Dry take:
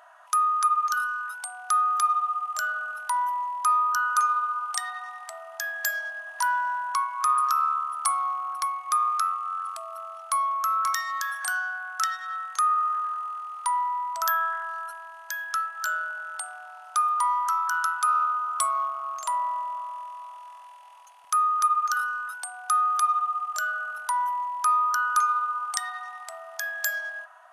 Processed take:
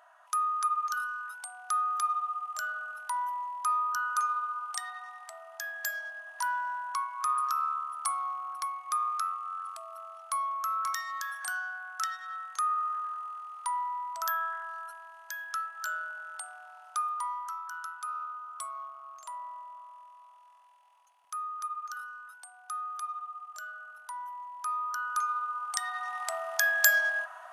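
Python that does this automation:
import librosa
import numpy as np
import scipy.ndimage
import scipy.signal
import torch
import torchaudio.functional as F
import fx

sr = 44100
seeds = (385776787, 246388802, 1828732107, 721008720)

y = fx.gain(x, sr, db=fx.line((16.86, -6.5), (17.64, -14.0), (24.22, -14.0), (25.69, -5.0), (26.27, 5.5)))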